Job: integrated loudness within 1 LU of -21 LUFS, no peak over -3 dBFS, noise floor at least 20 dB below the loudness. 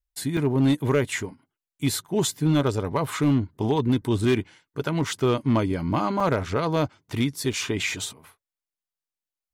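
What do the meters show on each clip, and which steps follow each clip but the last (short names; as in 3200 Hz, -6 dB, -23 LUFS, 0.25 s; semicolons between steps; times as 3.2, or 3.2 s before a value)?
clipped 0.8%; flat tops at -14.5 dBFS; dropouts 3; longest dropout 4.0 ms; loudness -25.0 LUFS; peak -14.5 dBFS; loudness target -21.0 LUFS
-> clip repair -14.5 dBFS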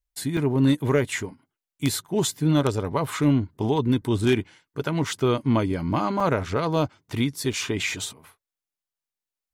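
clipped 0.0%; dropouts 3; longest dropout 4.0 ms
-> interpolate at 0.37/6.2/7.53, 4 ms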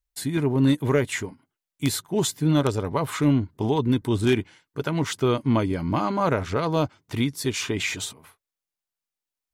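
dropouts 0; loudness -24.5 LUFS; peak -5.5 dBFS; loudness target -21.0 LUFS
-> gain +3.5 dB; limiter -3 dBFS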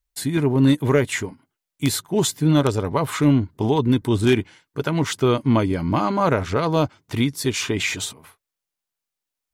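loudness -21.0 LUFS; peak -3.0 dBFS; noise floor -85 dBFS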